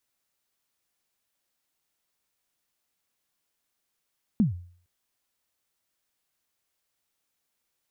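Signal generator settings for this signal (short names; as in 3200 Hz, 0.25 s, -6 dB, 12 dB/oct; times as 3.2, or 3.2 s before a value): kick drum length 0.46 s, from 240 Hz, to 88 Hz, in 0.131 s, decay 0.50 s, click off, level -15 dB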